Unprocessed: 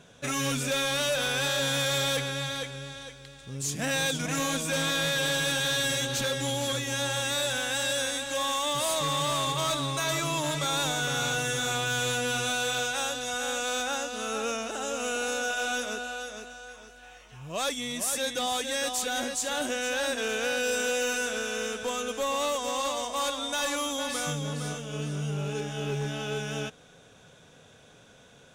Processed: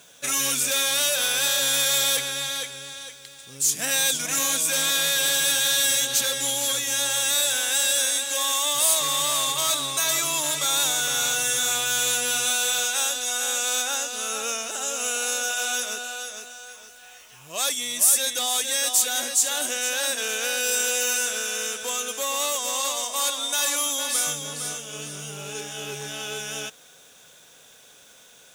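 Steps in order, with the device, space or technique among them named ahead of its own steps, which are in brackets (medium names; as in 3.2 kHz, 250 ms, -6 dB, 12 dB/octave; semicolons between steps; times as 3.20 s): turntable without a phono preamp (RIAA curve recording; white noise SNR 34 dB)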